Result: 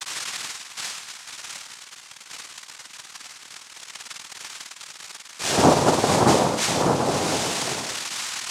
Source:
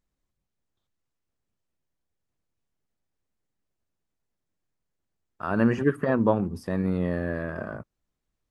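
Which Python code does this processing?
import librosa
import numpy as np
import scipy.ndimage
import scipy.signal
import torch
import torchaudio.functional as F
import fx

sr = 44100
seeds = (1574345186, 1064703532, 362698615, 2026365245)

y = x + 0.5 * 10.0 ** (-15.0 / 20.0) * np.diff(np.sign(x), prepend=np.sign(x[:1]))
y = fx.room_flutter(y, sr, wall_m=9.0, rt60_s=0.89)
y = fx.noise_vocoder(y, sr, seeds[0], bands=2)
y = y * 10.0 ** (2.0 / 20.0)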